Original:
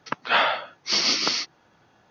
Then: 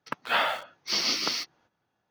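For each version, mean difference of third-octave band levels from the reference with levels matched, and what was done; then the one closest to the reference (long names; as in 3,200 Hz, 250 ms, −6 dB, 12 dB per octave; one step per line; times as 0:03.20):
4.0 dB: noise gate −56 dBFS, range −11 dB
in parallel at −9 dB: bit reduction 5 bits
on the sum: level −7.5 dB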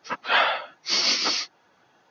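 2.0 dB: random phases in long frames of 50 ms
high-pass filter 310 Hz 6 dB per octave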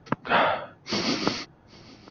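5.5 dB: spectral tilt −4 dB per octave
on a send: single-tap delay 805 ms −24 dB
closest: second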